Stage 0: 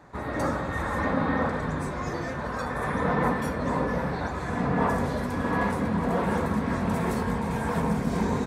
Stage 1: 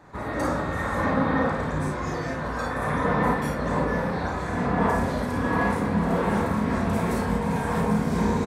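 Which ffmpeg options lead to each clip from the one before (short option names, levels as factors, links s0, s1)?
-af "aecho=1:1:34|53:0.562|0.596"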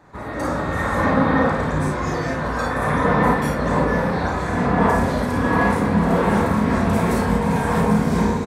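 -af "dynaudnorm=f=390:g=3:m=2"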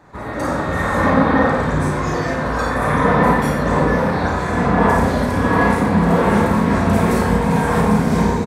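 -af "aecho=1:1:88:0.376,volume=1.33"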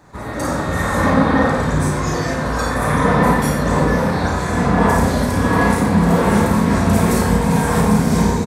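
-af "bass=f=250:g=3,treble=f=4000:g=9,volume=0.891"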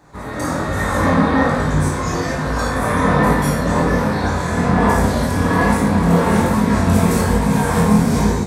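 -af "flanger=delay=19.5:depth=4.3:speed=1.2,volume=1.33"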